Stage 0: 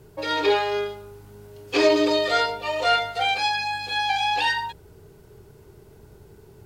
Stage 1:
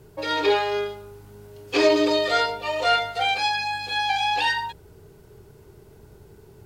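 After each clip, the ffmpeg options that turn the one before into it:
ffmpeg -i in.wav -af anull out.wav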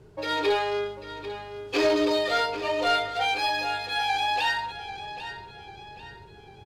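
ffmpeg -i in.wav -af "asoftclip=type=tanh:threshold=-13.5dB,aecho=1:1:794|1588|2382|3176:0.251|0.105|0.0443|0.0186,adynamicsmooth=sensitivity=6.5:basefreq=6800,volume=-2dB" out.wav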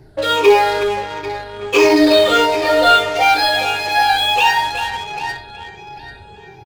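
ffmpeg -i in.wav -filter_complex "[0:a]afftfilt=real='re*pow(10,12/40*sin(2*PI*(0.76*log(max(b,1)*sr/1024/100)/log(2)-(-1.5)*(pts-256)/sr)))':imag='im*pow(10,12/40*sin(2*PI*(0.76*log(max(b,1)*sr/1024/100)/log(2)-(-1.5)*(pts-256)/sr)))':win_size=1024:overlap=0.75,asplit=2[link_01][link_02];[link_02]adelay=370,highpass=300,lowpass=3400,asoftclip=type=hard:threshold=-19.5dB,volume=-8dB[link_03];[link_01][link_03]amix=inputs=2:normalize=0,asplit=2[link_04][link_05];[link_05]acrusher=bits=4:mix=0:aa=0.5,volume=-5dB[link_06];[link_04][link_06]amix=inputs=2:normalize=0,volume=5.5dB" out.wav

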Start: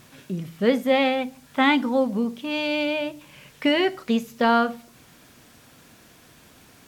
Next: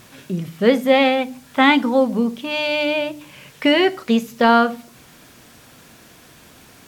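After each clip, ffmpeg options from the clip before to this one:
ffmpeg -i in.wav -af "bandreject=frequency=50:width_type=h:width=6,bandreject=frequency=100:width_type=h:width=6,bandreject=frequency=150:width_type=h:width=6,bandreject=frequency=200:width_type=h:width=6,bandreject=frequency=250:width_type=h:width=6,bandreject=frequency=300:width_type=h:width=6,volume=5.5dB" out.wav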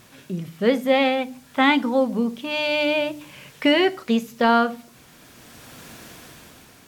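ffmpeg -i in.wav -af "dynaudnorm=framelen=190:gausssize=9:maxgain=10dB,volume=-4.5dB" out.wav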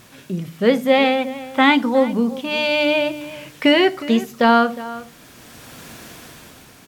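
ffmpeg -i in.wav -filter_complex "[0:a]asplit=2[link_01][link_02];[link_02]adelay=361.5,volume=-16dB,highshelf=frequency=4000:gain=-8.13[link_03];[link_01][link_03]amix=inputs=2:normalize=0,volume=3.5dB" out.wav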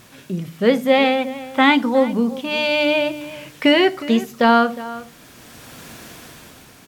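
ffmpeg -i in.wav -af anull out.wav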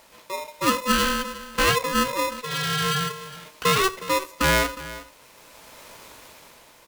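ffmpeg -i in.wav -af "aeval=exprs='val(0)*sgn(sin(2*PI*760*n/s))':channel_layout=same,volume=-6.5dB" out.wav

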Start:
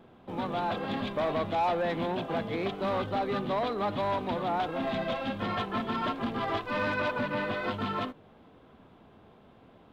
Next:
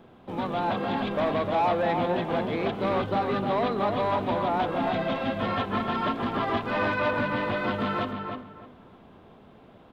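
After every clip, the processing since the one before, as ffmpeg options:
ffmpeg -i in.wav -filter_complex "[0:a]acrossover=split=4000[link_01][link_02];[link_02]acompressor=threshold=-55dB:ratio=4:attack=1:release=60[link_03];[link_01][link_03]amix=inputs=2:normalize=0,asplit=2[link_04][link_05];[link_05]adelay=305,lowpass=frequency=2400:poles=1,volume=-4.5dB,asplit=2[link_06][link_07];[link_07]adelay=305,lowpass=frequency=2400:poles=1,volume=0.25,asplit=2[link_08][link_09];[link_09]adelay=305,lowpass=frequency=2400:poles=1,volume=0.25[link_10];[link_04][link_06][link_08][link_10]amix=inputs=4:normalize=0,volume=3dB" out.wav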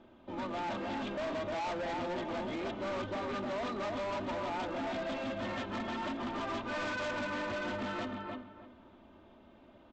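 ffmpeg -i in.wav -af "aecho=1:1:3.3:0.64,aresample=16000,asoftclip=type=hard:threshold=-26.5dB,aresample=44100,volume=-7.5dB" out.wav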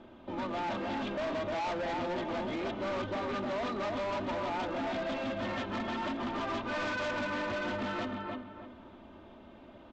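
ffmpeg -i in.wav -filter_complex "[0:a]lowpass=7200,asplit=2[link_01][link_02];[link_02]acompressor=threshold=-47dB:ratio=6,volume=-0.5dB[link_03];[link_01][link_03]amix=inputs=2:normalize=0" out.wav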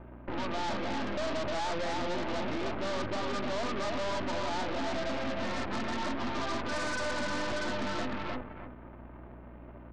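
ffmpeg -i in.wav -af "asuperstop=centerf=5500:order=8:qfactor=0.61,aeval=exprs='0.0376*(cos(1*acos(clip(val(0)/0.0376,-1,1)))-cos(1*PI/2))+0.0119*(cos(6*acos(clip(val(0)/0.0376,-1,1)))-cos(6*PI/2))':channel_layout=same,aeval=exprs='val(0)+0.00355*(sin(2*PI*60*n/s)+sin(2*PI*2*60*n/s)/2+sin(2*PI*3*60*n/s)/3+sin(2*PI*4*60*n/s)/4+sin(2*PI*5*60*n/s)/5)':channel_layout=same" out.wav

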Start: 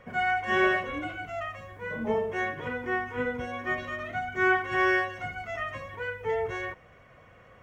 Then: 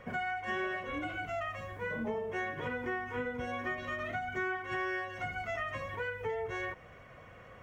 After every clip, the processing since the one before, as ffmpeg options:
ffmpeg -i in.wav -af "acompressor=threshold=-35dB:ratio=6,volume=1.5dB" out.wav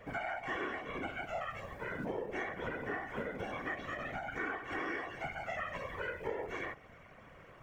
ffmpeg -i in.wav -filter_complex "[0:a]tremolo=f=100:d=0.667,acrossover=split=130|1300[link_01][link_02][link_03];[link_01]acrusher=samples=30:mix=1:aa=0.000001:lfo=1:lforange=48:lforate=0.68[link_04];[link_04][link_02][link_03]amix=inputs=3:normalize=0,afftfilt=real='hypot(re,im)*cos(2*PI*random(0))':imag='hypot(re,im)*sin(2*PI*random(1))':win_size=512:overlap=0.75,volume=6dB" out.wav

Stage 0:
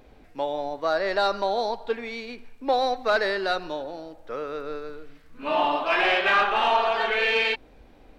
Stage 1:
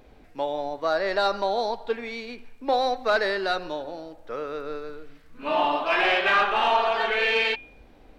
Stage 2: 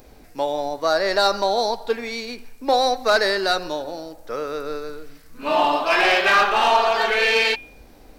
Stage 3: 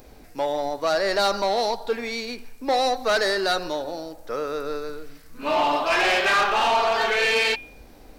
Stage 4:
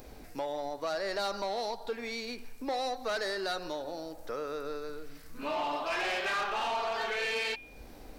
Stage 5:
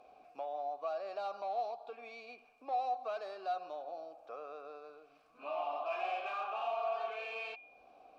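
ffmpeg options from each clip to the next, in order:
ffmpeg -i in.wav -af "bandreject=frequency=269.6:width_type=h:width=4,bandreject=frequency=539.2:width_type=h:width=4,bandreject=frequency=808.8:width_type=h:width=4,bandreject=frequency=1078.4:width_type=h:width=4,bandreject=frequency=1348:width_type=h:width=4,bandreject=frequency=1617.6:width_type=h:width=4,bandreject=frequency=1887.2:width_type=h:width=4,bandreject=frequency=2156.8:width_type=h:width=4,bandreject=frequency=2426.4:width_type=h:width=4,bandreject=frequency=2696:width_type=h:width=4,bandreject=frequency=2965.6:width_type=h:width=4,bandreject=frequency=3235.2:width_type=h:width=4,bandreject=frequency=3504.8:width_type=h:width=4" out.wav
ffmpeg -i in.wav -af "aexciter=amount=3.6:drive=4.8:freq=4500,volume=4.5dB" out.wav
ffmpeg -i in.wav -af "asoftclip=type=tanh:threshold=-15.5dB" out.wav
ffmpeg -i in.wav -af "acompressor=threshold=-38dB:ratio=2,volume=-1.5dB" out.wav
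ffmpeg -i in.wav -filter_complex "[0:a]asplit=3[link_01][link_02][link_03];[link_01]bandpass=frequency=730:width_type=q:width=8,volume=0dB[link_04];[link_02]bandpass=frequency=1090:width_type=q:width=8,volume=-6dB[link_05];[link_03]bandpass=frequency=2440:width_type=q:width=8,volume=-9dB[link_06];[link_04][link_05][link_06]amix=inputs=3:normalize=0,volume=3dB" out.wav

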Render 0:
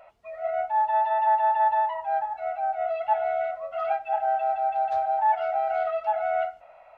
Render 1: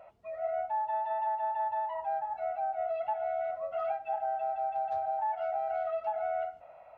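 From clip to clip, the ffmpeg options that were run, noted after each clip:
ffmpeg -i in.wav -af "highpass=69,tiltshelf=frequency=680:gain=6,acompressor=threshold=-28dB:ratio=6,volume=-1.5dB" out.wav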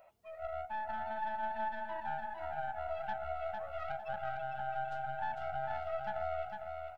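ffmpeg -i in.wav -af "aeval=exprs='(tanh(22.4*val(0)+0.8)-tanh(0.8))/22.4':channel_layout=same,crystalizer=i=3.5:c=0,aecho=1:1:453|906|1359|1812:0.596|0.185|0.0572|0.0177,volume=-4dB" out.wav

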